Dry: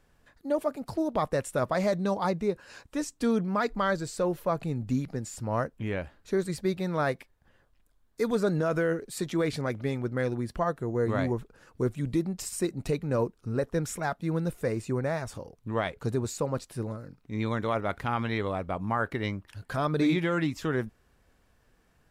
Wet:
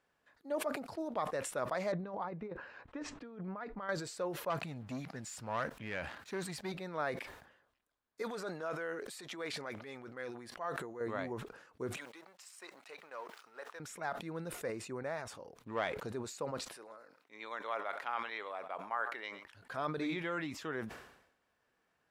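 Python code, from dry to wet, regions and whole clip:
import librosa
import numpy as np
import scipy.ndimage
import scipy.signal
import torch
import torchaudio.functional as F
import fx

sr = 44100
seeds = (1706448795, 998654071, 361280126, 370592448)

y = fx.chain(x, sr, fx.over_compress(threshold_db=-30.0, ratio=-0.5),
    fx.lowpass(hz=2200.0, slope=12),
    fx.low_shelf(hz=100.0, db=10.0), at=(1.92, 3.89))
y = fx.chain(y, sr, fx.highpass(hz=44.0, slope=12),
    fx.peak_eq(hz=420.0, db=-7.5, octaves=1.3),
    fx.leveller(passes=2), at=(4.5, 6.72))
y = fx.chain(y, sr, fx.transient(attack_db=-6, sustain_db=7),
    fx.low_shelf(hz=340.0, db=-10.5),
    fx.sustainer(db_per_s=32.0), at=(8.22, 11.01))
y = fx.chain(y, sr, fx.law_mismatch(coded='A'),
    fx.highpass(hz=940.0, slope=12),
    fx.high_shelf(hz=4500.0, db=-6.0), at=(11.96, 13.8))
y = fx.chain(y, sr, fx.leveller(passes=1),
    fx.sustainer(db_per_s=50.0), at=(15.56, 16.07))
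y = fx.chain(y, sr, fx.highpass(hz=570.0, slope=12),
    fx.echo_single(ms=111, db=-21.0), at=(16.74, 19.45))
y = fx.highpass(y, sr, hz=640.0, slope=6)
y = fx.high_shelf(y, sr, hz=5100.0, db=-10.5)
y = fx.sustainer(y, sr, db_per_s=71.0)
y = F.gain(torch.from_numpy(y), -5.5).numpy()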